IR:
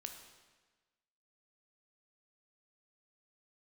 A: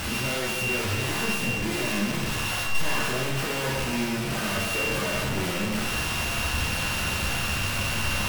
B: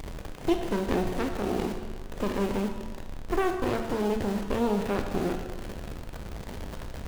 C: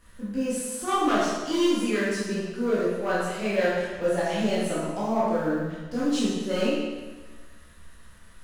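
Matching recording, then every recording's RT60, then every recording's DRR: B; 1.3 s, 1.3 s, 1.3 s; -3.5 dB, 4.5 dB, -9.0 dB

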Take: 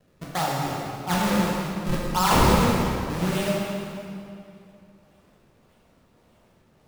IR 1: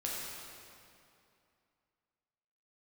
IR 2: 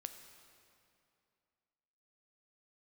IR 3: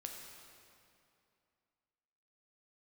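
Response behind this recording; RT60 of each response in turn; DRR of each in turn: 1; 2.6 s, 2.6 s, 2.6 s; -5.0 dB, 7.0 dB, 1.0 dB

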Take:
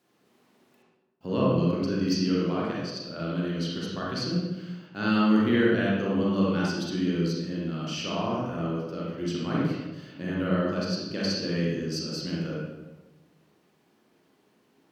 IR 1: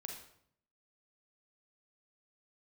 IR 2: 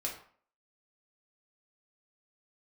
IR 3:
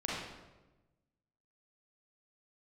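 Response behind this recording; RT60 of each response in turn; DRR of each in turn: 3; 0.65 s, 0.50 s, 1.1 s; 1.5 dB, -2.5 dB, -6.0 dB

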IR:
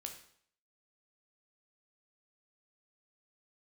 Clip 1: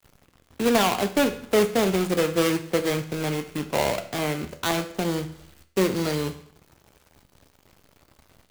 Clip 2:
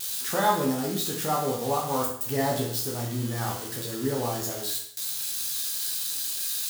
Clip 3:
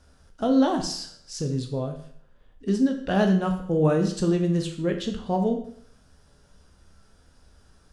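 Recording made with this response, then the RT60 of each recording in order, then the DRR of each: 3; 0.60 s, 0.60 s, 0.60 s; 8.5 dB, -2.0 dB, 3.5 dB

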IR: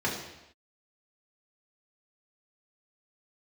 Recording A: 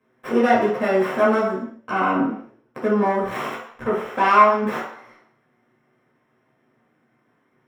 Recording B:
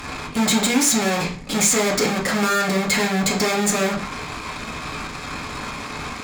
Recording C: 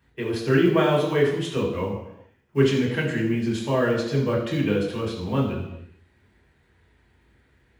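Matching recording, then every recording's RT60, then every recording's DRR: C; no single decay rate, 0.40 s, no single decay rate; -7.5 dB, -2.5 dB, -5.0 dB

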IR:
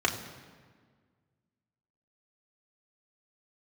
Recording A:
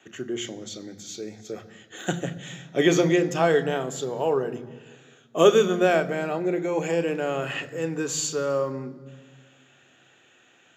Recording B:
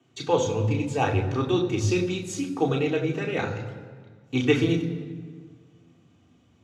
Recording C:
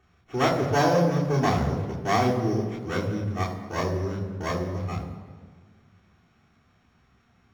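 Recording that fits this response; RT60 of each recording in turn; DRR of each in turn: B; 1.7 s, 1.6 s, 1.6 s; 9.5 dB, -0.5 dB, -6.5 dB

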